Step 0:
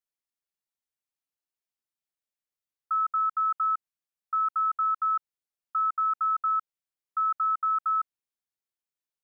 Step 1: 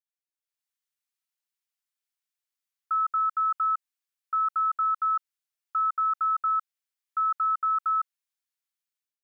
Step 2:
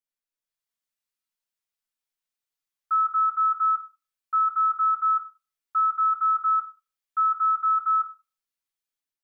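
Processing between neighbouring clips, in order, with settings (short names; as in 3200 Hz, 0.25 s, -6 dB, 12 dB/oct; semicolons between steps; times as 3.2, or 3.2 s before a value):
HPF 1200 Hz 12 dB/oct; AGC gain up to 11.5 dB; gain -8.5 dB
reverb RT60 0.30 s, pre-delay 5 ms, DRR 0.5 dB; gain -2.5 dB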